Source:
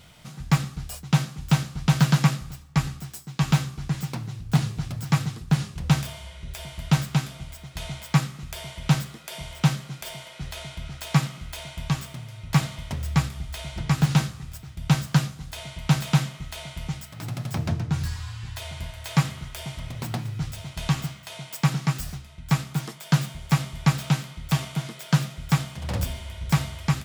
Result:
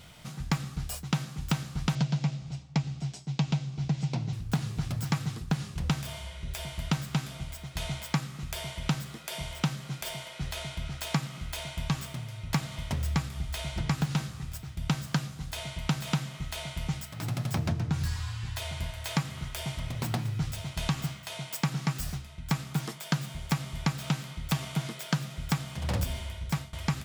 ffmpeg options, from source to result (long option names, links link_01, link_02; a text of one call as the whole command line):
ffmpeg -i in.wav -filter_complex "[0:a]asettb=1/sr,asplit=3[link_01][link_02][link_03];[link_01]atrim=end=1.954[link_04];[link_02]atrim=start=1.95:end=4.33,asetpts=PTS-STARTPTS,afade=type=in:duration=0.004:curve=qsin,afade=type=out:start_time=2.376:duration=0.004:curve=qsin,highpass=100,equalizer=frequency=140:width_type=q:width=4:gain=7,equalizer=frequency=660:width_type=q:width=4:gain=4,equalizer=frequency=1200:width_type=q:width=4:gain=-9,equalizer=frequency=1700:width_type=q:width=4:gain=-7,lowpass=frequency=6700:width=0.5412,lowpass=frequency=6700:width=1.3066[link_05];[link_03]atrim=start=4.326[link_06];[link_04][link_05]acrossfade=duration=0.004:curve1=hsin:curve2=qsin[link_07];[link_07][link_06]acrossfade=duration=0.004:curve1=qsin:curve2=hsin,asplit=2[link_08][link_09];[link_08]atrim=end=26.73,asetpts=PTS-STARTPTS,afade=type=out:start_time=26.24:duration=0.49:silence=0.125893[link_10];[link_09]atrim=start=26.73,asetpts=PTS-STARTPTS,afade=type=in:duration=0.004:curve=hsin:silence=0.125893[link_11];[link_10][link_11]concat=n=2:v=0:a=1,acompressor=threshold=-24dB:ratio=12" out.wav